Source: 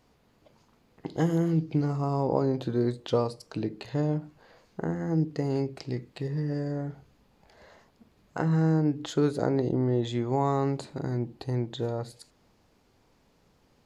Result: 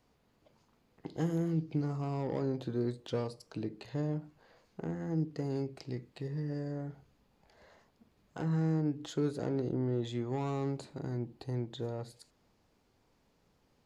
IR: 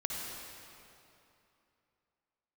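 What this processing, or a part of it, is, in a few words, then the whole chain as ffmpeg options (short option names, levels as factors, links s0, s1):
one-band saturation: -filter_complex "[0:a]acrossover=split=450|4600[s0][s1][s2];[s1]asoftclip=type=tanh:threshold=0.0266[s3];[s0][s3][s2]amix=inputs=3:normalize=0,volume=0.473"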